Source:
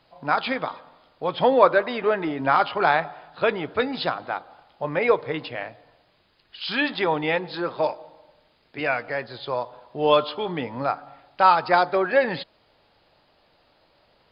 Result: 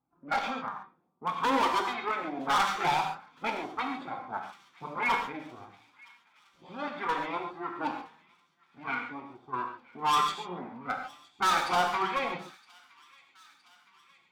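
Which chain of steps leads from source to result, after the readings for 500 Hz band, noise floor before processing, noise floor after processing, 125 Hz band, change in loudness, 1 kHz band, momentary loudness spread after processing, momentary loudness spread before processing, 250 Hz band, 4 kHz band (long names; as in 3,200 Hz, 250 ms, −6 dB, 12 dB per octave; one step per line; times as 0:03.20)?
−16.0 dB, −63 dBFS, −67 dBFS, −11.0 dB, −7.5 dB, −5.5 dB, 16 LU, 15 LU, −8.5 dB, −5.0 dB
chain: lower of the sound and its delayed copy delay 0.87 ms
flanger 0.53 Hz, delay 2.4 ms, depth 3.5 ms, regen +34%
dynamic equaliser 780 Hz, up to +7 dB, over −36 dBFS, Q 0.79
auto-filter notch saw up 1.6 Hz 350–2,900 Hz
high-pass filter 150 Hz 12 dB per octave
low-pass that shuts in the quiet parts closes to 410 Hz, open at −20 dBFS
low-shelf EQ 290 Hz −9 dB
gain into a clipping stage and back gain 23 dB
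delay with a high-pass on its return 965 ms, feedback 65%, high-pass 1,900 Hz, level −21.5 dB
reverb whose tail is shaped and stops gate 160 ms flat, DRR 3 dB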